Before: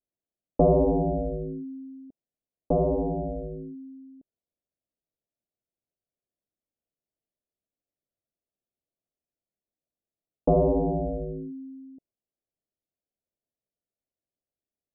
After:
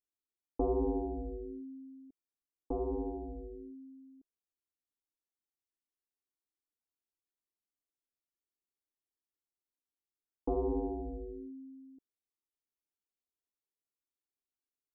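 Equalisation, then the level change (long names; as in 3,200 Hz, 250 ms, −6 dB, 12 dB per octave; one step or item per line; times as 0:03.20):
phaser with its sweep stopped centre 590 Hz, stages 6
−7.0 dB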